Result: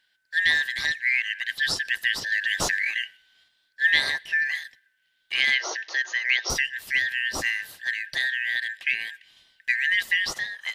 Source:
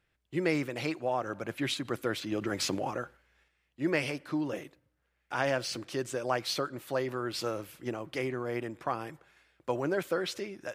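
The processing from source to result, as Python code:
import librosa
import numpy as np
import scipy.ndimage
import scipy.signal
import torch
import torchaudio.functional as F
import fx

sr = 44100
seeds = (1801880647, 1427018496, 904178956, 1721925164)

y = fx.band_shuffle(x, sr, order='4123')
y = fx.dynamic_eq(y, sr, hz=730.0, q=0.7, threshold_db=-46.0, ratio=4.0, max_db=5, at=(3.02, 4.3), fade=0.02)
y = fx.brickwall_bandpass(y, sr, low_hz=320.0, high_hz=6800.0, at=(5.54, 6.5))
y = y * librosa.db_to_amplitude(7.0)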